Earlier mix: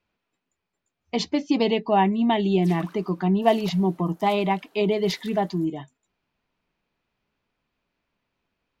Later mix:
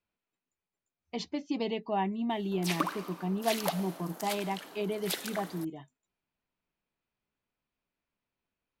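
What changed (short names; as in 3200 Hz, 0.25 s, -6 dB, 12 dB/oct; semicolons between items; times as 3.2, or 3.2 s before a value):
speech -11.0 dB; background +11.5 dB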